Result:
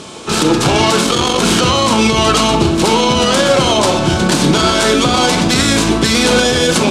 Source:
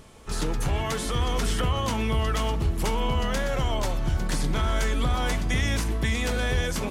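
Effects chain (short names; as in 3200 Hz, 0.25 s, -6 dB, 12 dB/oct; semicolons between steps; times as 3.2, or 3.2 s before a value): tracing distortion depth 0.39 ms; bell 560 Hz -5 dB 2.7 oct; 1.01–1.42 tube stage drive 20 dB, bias 0.55; speaker cabinet 220–8900 Hz, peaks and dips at 340 Hz +5 dB, 1900 Hz -9 dB, 3900 Hz +3 dB; reverb RT60 0.45 s, pre-delay 29 ms, DRR 7 dB; maximiser +24.5 dB; gain -1 dB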